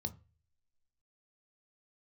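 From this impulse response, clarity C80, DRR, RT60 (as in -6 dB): 25.5 dB, 9.0 dB, 0.35 s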